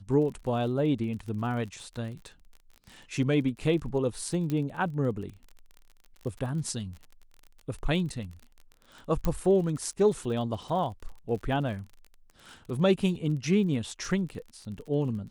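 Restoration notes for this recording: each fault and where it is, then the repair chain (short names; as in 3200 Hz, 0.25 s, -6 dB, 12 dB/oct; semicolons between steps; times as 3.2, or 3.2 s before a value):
crackle 37/s -38 dBFS
4.5 pop -19 dBFS
9.25 pop -16 dBFS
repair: de-click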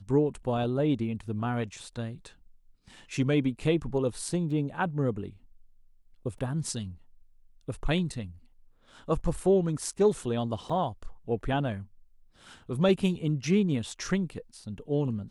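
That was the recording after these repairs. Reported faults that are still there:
4.5 pop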